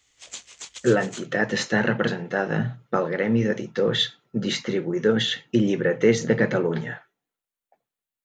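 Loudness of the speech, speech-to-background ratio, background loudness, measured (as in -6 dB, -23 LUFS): -23.5 LUFS, 16.0 dB, -39.5 LUFS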